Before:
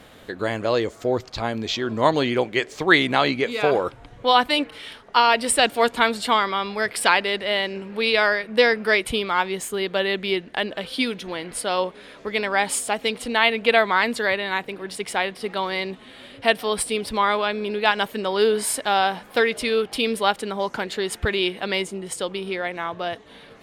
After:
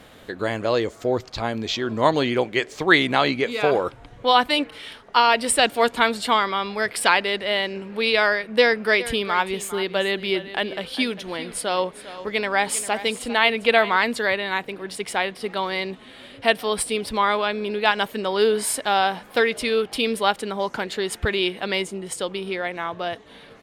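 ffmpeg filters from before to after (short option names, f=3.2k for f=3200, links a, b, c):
-filter_complex "[0:a]asplit=3[a][b][c];[a]afade=t=out:st=8.99:d=0.02[d];[b]aecho=1:1:401:0.188,afade=t=in:st=8.99:d=0.02,afade=t=out:st=13.96:d=0.02[e];[c]afade=t=in:st=13.96:d=0.02[f];[d][e][f]amix=inputs=3:normalize=0"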